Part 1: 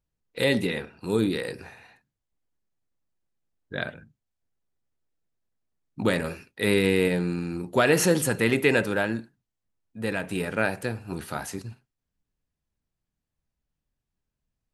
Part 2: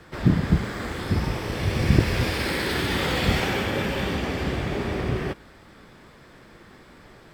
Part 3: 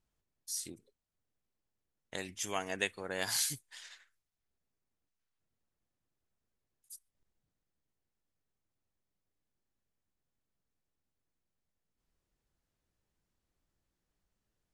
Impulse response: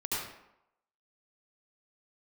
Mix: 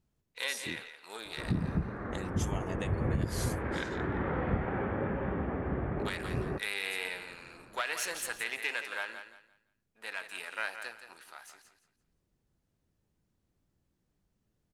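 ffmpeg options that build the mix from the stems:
-filter_complex "[0:a]aeval=exprs='if(lt(val(0),0),0.447*val(0),val(0))':c=same,highpass=1100,highshelf=f=10000:g=-5.5,volume=0.631,afade=t=out:st=11.07:d=0.26:silence=0.446684,asplit=3[s0][s1][s2];[s1]volume=0.316[s3];[1:a]lowpass=f=1600:w=0.5412,lowpass=f=1600:w=1.3066,adelay=1250,volume=0.473[s4];[2:a]equalizer=f=150:w=0.32:g=11,acompressor=threshold=0.0158:ratio=6,volume=1[s5];[s2]apad=whole_len=378417[s6];[s4][s6]sidechaincompress=threshold=0.0141:ratio=8:attack=47:release=493[s7];[s3]aecho=0:1:171|342|513|684:1|0.26|0.0676|0.0176[s8];[s0][s7][s5][s8]amix=inputs=4:normalize=0,alimiter=limit=0.1:level=0:latency=1:release=226"

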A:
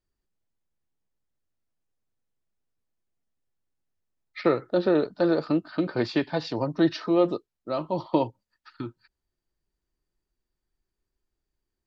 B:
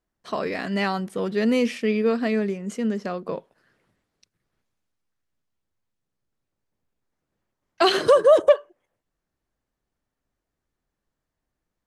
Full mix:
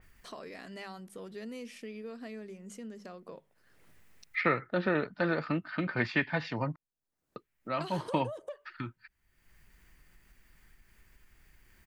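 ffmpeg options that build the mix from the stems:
-filter_complex "[0:a]firequalizer=gain_entry='entry(210,0);entry(320,-9);entry(2000,10);entry(4000,-8)':delay=0.05:min_phase=1,volume=0.841,asplit=3[s0][s1][s2];[s0]atrim=end=6.76,asetpts=PTS-STARTPTS,afade=t=out:st=6.756:d=0.004:c=hsin[s3];[s1]atrim=start=6.76:end=7.36,asetpts=PTS-STARTPTS,volume=0[s4];[s2]atrim=start=7.36,asetpts=PTS-STARTPTS,afade=t=in:d=0.004:c=hsin[s5];[s3][s4][s5]concat=n=3:v=0:a=1[s6];[1:a]bandreject=f=50:t=h:w=6,bandreject=f=100:t=h:w=6,bandreject=f=150:t=h:w=6,bandreject=f=200:t=h:w=6,acompressor=threshold=0.1:ratio=5,volume=0.112[s7];[s6][s7]amix=inputs=2:normalize=0,highshelf=f=6800:g=11,acompressor=mode=upward:threshold=0.01:ratio=2.5,adynamicequalizer=threshold=0.00562:dfrequency=2900:dqfactor=0.7:tfrequency=2900:tqfactor=0.7:attack=5:release=100:ratio=0.375:range=2.5:mode=cutabove:tftype=highshelf"

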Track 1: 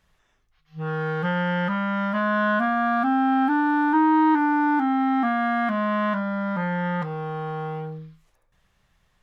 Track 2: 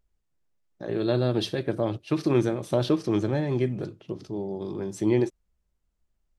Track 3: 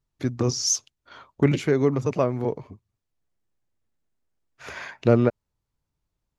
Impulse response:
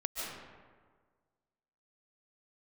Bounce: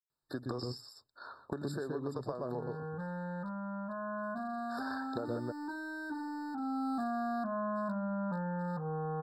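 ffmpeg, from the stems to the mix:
-filter_complex "[0:a]lowpass=1100,bandreject=f=106.1:t=h:w=4,bandreject=f=212.2:t=h:w=4,bandreject=f=318.3:t=h:w=4,bandreject=f=424.4:t=h:w=4,aeval=exprs='0.112*(abs(mod(val(0)/0.112+3,4)-2)-1)':c=same,adelay=1750,volume=0.708,afade=t=in:st=6.58:d=0.35:silence=0.298538[s0];[2:a]adelay=100,volume=1.06,asplit=2[s1][s2];[s2]volume=0.188[s3];[s1]highpass=f=760:p=1,acompressor=threshold=0.0282:ratio=6,volume=1[s4];[s3]aecho=0:1:121:1[s5];[s0][s4][s5]amix=inputs=3:normalize=0,acrossover=split=1900|4600[s6][s7][s8];[s6]acompressor=threshold=0.02:ratio=4[s9];[s7]acompressor=threshold=0.00158:ratio=4[s10];[s8]acompressor=threshold=0.00794:ratio=4[s11];[s9][s10][s11]amix=inputs=3:normalize=0,afftfilt=real='re*eq(mod(floor(b*sr/1024/1800),2),0)':imag='im*eq(mod(floor(b*sr/1024/1800),2),0)':win_size=1024:overlap=0.75"

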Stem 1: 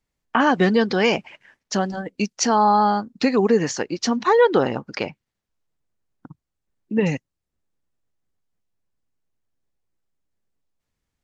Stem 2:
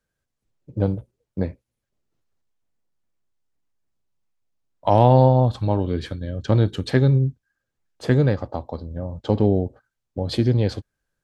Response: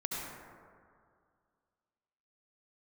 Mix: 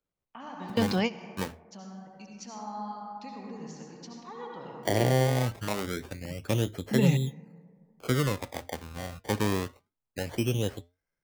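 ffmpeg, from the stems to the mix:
-filter_complex "[0:a]equalizer=f=160:t=o:w=0.67:g=8,equalizer=f=400:t=o:w=0.67:g=-8,equalizer=f=1600:t=o:w=0.67:g=-9,volume=0.794,asplit=2[s0][s1];[s1]volume=0.0841[s2];[1:a]lowpass=2100,acrusher=samples=23:mix=1:aa=0.000001:lfo=1:lforange=23:lforate=0.25,flanger=delay=4.7:depth=1.5:regen=-87:speed=0.89:shape=sinusoidal,volume=1,asplit=2[s3][s4];[s4]apad=whole_len=495605[s5];[s0][s5]sidechaingate=range=0.0224:threshold=0.00891:ratio=16:detection=peak[s6];[2:a]atrim=start_sample=2205[s7];[s2][s7]afir=irnorm=-1:irlink=0[s8];[s6][s3][s8]amix=inputs=3:normalize=0,lowshelf=f=300:g=-7,acrossover=split=470[s9][s10];[s10]acompressor=threshold=0.0355:ratio=5[s11];[s9][s11]amix=inputs=2:normalize=0"

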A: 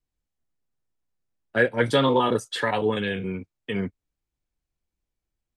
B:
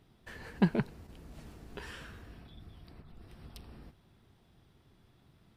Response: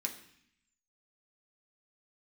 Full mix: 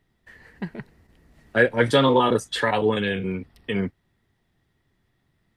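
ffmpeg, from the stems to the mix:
-filter_complex "[0:a]volume=1.33[s0];[1:a]equalizer=f=1900:w=7.1:g=14,volume=0.501[s1];[s0][s1]amix=inputs=2:normalize=0"

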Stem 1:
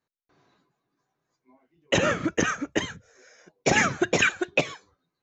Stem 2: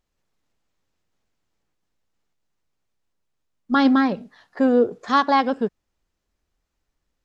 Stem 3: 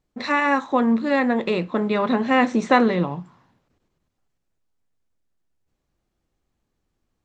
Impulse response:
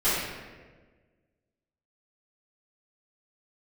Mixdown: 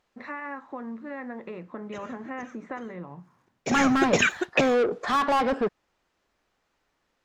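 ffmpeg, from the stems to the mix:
-filter_complex "[0:a]aeval=exprs='sgn(val(0))*max(abs(val(0))-0.002,0)':c=same,volume=0.944[s0];[1:a]asplit=2[s1][s2];[s2]highpass=f=720:p=1,volume=25.1,asoftclip=type=tanh:threshold=0.473[s3];[s1][s3]amix=inputs=2:normalize=0,lowpass=f=1900:p=1,volume=0.501,volume=0.355[s4];[2:a]acompressor=threshold=0.0631:ratio=4,highshelf=f=2700:t=q:w=1.5:g=-12,volume=0.282,asplit=2[s5][s6];[s6]apad=whole_len=230412[s7];[s0][s7]sidechaincompress=threshold=0.00112:ratio=6:attack=8.1:release=563[s8];[s8][s4][s5]amix=inputs=3:normalize=0"

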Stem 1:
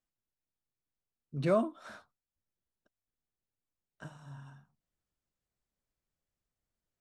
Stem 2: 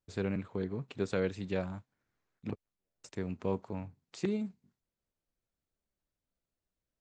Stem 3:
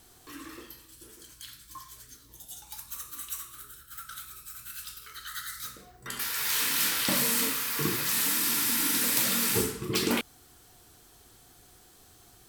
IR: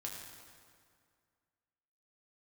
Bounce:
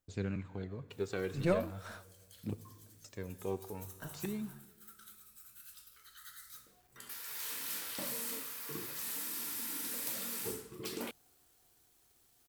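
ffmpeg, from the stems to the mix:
-filter_complex "[0:a]aeval=exprs='if(lt(val(0),0),0.708*val(0),val(0))':c=same,volume=1.19[s0];[1:a]aphaser=in_gain=1:out_gain=1:delay=2.7:decay=0.5:speed=0.42:type=triangular,volume=0.422,asplit=3[s1][s2][s3];[s2]volume=0.398[s4];[2:a]bandreject=f=54.67:t=h:w=4,bandreject=f=109.34:t=h:w=4,bandreject=f=164.01:t=h:w=4,adynamicequalizer=threshold=0.00355:dfrequency=560:dqfactor=0.98:tfrequency=560:tqfactor=0.98:attack=5:release=100:ratio=0.375:range=3.5:mode=boostabove:tftype=bell,acrusher=bits=8:mix=0:aa=0.000001,adelay=900,volume=0.141[s5];[s3]apad=whole_len=309140[s6];[s0][s6]sidechaincompress=threshold=0.00562:ratio=8:attack=24:release=212[s7];[3:a]atrim=start_sample=2205[s8];[s4][s8]afir=irnorm=-1:irlink=0[s9];[s7][s1][s5][s9]amix=inputs=4:normalize=0,highshelf=f=7200:g=6"

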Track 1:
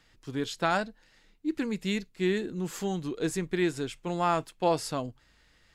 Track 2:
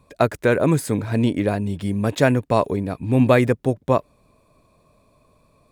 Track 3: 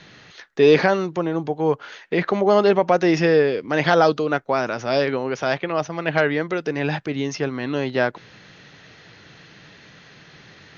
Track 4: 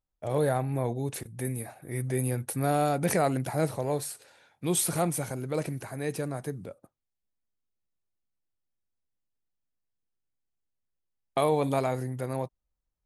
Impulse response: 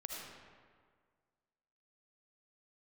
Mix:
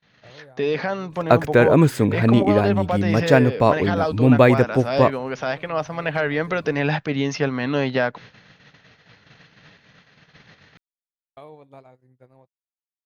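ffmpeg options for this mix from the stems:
-filter_complex "[1:a]adelay=1100,volume=1.26[s0];[2:a]equalizer=f=350:w=5.9:g=-12.5,alimiter=limit=0.266:level=0:latency=1:release=309,volume=0.891[s1];[3:a]highshelf=f=8600:g=-9,acompressor=threshold=0.0141:ratio=4,volume=0.355[s2];[s0][s1][s2]amix=inputs=3:normalize=0,agate=range=0.0224:threshold=0.00501:ratio=16:detection=peak,equalizer=f=9900:t=o:w=0.97:g=-11.5,dynaudnorm=f=170:g=11:m=1.78"

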